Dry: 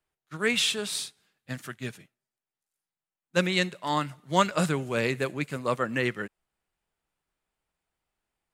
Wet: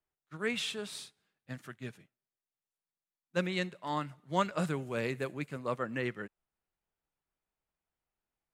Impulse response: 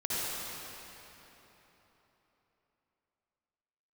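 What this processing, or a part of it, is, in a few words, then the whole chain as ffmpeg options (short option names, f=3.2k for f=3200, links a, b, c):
behind a face mask: -filter_complex "[0:a]highshelf=f=2.9k:g=-7.5,asettb=1/sr,asplit=3[a][b][c];[a]atrim=end=4.674[d];[b]atrim=start=4.67:end=5.49,asetpts=PTS-STARTPTS,afade=t=in:d=0.004:c=qsin,afade=t=out:st=0.816:d=0.004:c=qsin,highshelf=f=8.5k:g=7[e];[c]atrim=start=5.486[f];[d][e]acrossfade=d=0.004:c1=hsin:c2=qsin[g];[g][f]acrossfade=d=0.004:c1=qsin:c2=hsin,volume=-6.5dB"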